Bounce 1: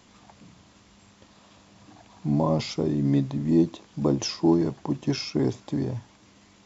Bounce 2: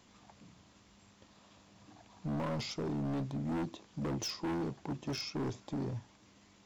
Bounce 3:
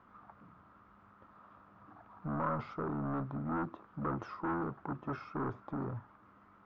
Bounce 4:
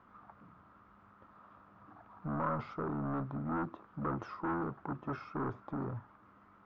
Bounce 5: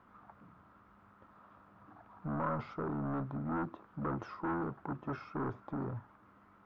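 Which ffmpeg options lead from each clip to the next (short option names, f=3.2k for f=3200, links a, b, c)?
-af "asoftclip=type=hard:threshold=-26dB,volume=-7dB"
-af "lowpass=f=1.3k:t=q:w=6.4,volume=-2dB"
-af anull
-af "equalizer=f=1.2k:t=o:w=0.25:g=-3"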